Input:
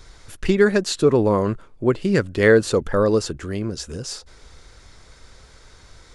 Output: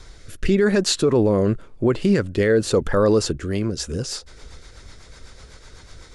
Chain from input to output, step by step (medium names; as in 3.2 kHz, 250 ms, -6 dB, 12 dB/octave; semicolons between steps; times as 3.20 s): rotary cabinet horn 0.9 Hz, later 8 Hz, at 3.24 s; peak limiter -15 dBFS, peak gain reduction 10.5 dB; trim +5.5 dB